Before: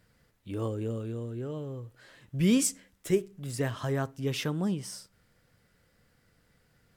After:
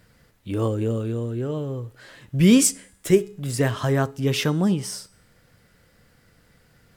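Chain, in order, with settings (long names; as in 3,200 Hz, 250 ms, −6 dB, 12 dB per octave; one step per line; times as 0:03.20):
hum removal 418.3 Hz, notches 26
level +9 dB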